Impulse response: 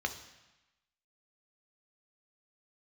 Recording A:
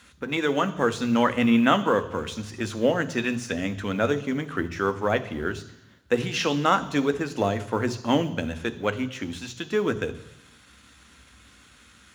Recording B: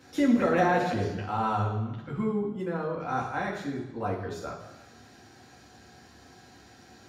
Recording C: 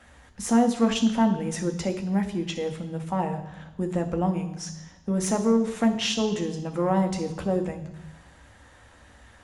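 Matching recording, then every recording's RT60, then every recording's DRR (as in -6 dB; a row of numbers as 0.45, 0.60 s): C; 1.0, 1.0, 1.0 s; 10.5, -2.5, 5.5 dB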